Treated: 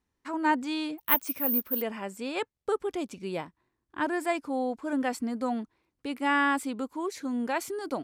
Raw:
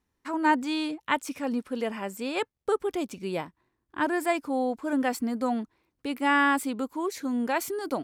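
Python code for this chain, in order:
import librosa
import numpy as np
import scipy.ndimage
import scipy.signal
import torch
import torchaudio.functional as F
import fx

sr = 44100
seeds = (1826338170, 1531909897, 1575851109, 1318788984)

y = scipy.signal.sosfilt(scipy.signal.butter(2, 11000.0, 'lowpass', fs=sr, output='sos'), x)
y = fx.resample_bad(y, sr, factor=3, down='filtered', up='zero_stuff', at=(0.98, 1.82))
y = y * librosa.db_to_amplitude(-2.5)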